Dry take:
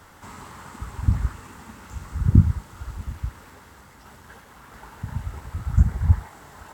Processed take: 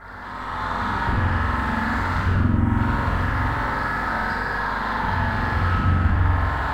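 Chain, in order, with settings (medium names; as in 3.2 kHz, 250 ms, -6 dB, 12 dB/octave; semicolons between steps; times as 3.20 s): coarse spectral quantiser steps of 15 dB; high-pass 610 Hz 6 dB/octave; resonant high shelf 2.5 kHz -13.5 dB, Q 3; on a send: flutter echo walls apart 7.7 m, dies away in 1.2 s; on the sum: compression 6:1, threshold -43 dBFS, peak gain reduction 20.5 dB; in parallel at -5 dB: sine folder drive 10 dB, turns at -33 dBFS; on the sum: tilt EQ -2 dB/octave; hum 50 Hz, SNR 13 dB; level rider gain up to 10.5 dB; gated-style reverb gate 420 ms falling, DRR -6.5 dB; trim -4.5 dB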